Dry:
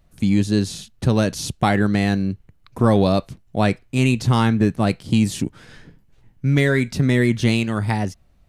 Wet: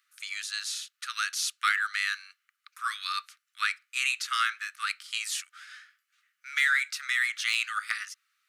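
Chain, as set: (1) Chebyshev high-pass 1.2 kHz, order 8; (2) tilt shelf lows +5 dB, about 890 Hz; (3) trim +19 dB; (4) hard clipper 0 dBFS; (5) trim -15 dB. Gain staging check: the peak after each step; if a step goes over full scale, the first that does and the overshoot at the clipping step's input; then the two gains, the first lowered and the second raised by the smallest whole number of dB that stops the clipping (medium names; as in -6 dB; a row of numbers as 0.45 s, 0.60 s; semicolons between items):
-12.0 dBFS, -15.5 dBFS, +3.5 dBFS, 0.0 dBFS, -15.0 dBFS; step 3, 3.5 dB; step 3 +15 dB, step 5 -11 dB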